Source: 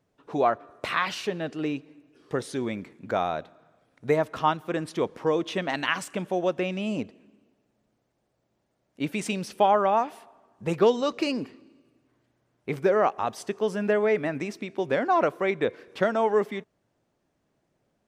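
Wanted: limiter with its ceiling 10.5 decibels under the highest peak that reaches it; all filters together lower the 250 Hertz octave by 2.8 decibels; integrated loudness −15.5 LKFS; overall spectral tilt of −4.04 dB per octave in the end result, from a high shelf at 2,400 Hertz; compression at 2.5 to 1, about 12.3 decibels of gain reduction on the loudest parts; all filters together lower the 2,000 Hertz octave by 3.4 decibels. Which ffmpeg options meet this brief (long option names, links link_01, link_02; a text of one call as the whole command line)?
ffmpeg -i in.wav -af "equalizer=frequency=250:width_type=o:gain=-4,equalizer=frequency=2000:width_type=o:gain=-8.5,highshelf=frequency=2400:gain=8,acompressor=threshold=-36dB:ratio=2.5,volume=25dB,alimiter=limit=-5dB:level=0:latency=1" out.wav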